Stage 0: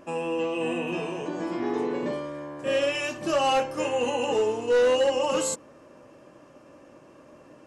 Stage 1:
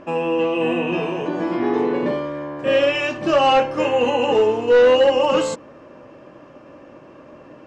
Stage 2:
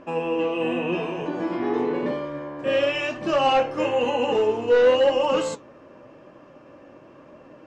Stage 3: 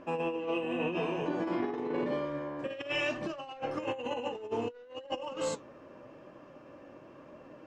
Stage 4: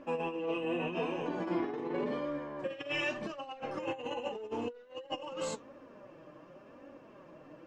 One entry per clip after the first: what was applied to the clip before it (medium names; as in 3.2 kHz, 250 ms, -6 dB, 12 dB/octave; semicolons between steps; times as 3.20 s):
low-pass 3.7 kHz 12 dB/octave; trim +8 dB
flange 0.94 Hz, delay 3.6 ms, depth 7.6 ms, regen +78%
compressor with a negative ratio -26 dBFS, ratio -0.5; trim -8 dB
flange 0.87 Hz, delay 3.4 ms, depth 3.4 ms, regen +37%; trim +2 dB